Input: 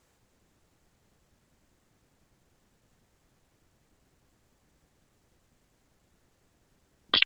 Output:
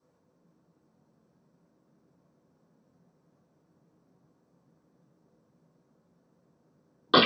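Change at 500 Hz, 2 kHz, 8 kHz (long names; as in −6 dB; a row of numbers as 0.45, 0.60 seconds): +16.5, 0.0, −6.0 decibels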